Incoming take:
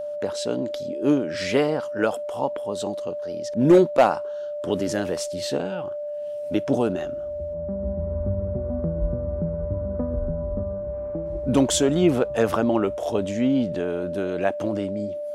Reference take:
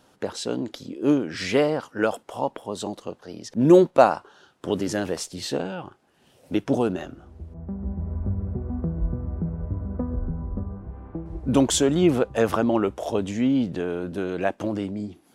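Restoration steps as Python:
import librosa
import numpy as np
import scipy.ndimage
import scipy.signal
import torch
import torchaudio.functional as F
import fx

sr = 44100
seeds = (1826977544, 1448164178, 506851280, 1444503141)

y = fx.fix_declip(x, sr, threshold_db=-8.0)
y = fx.notch(y, sr, hz=590.0, q=30.0)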